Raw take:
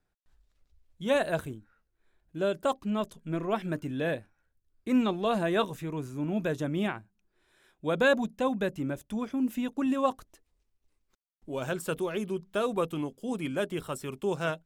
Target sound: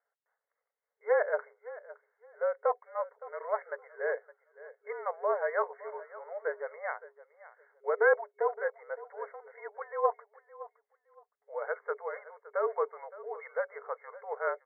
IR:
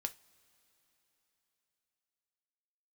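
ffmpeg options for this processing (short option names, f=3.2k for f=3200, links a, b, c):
-af "aecho=1:1:565|1130:0.133|0.028,afreqshift=-47,afftfilt=real='re*between(b*sr/4096,410,2200)':imag='im*between(b*sr/4096,410,2200)':win_size=4096:overlap=0.75"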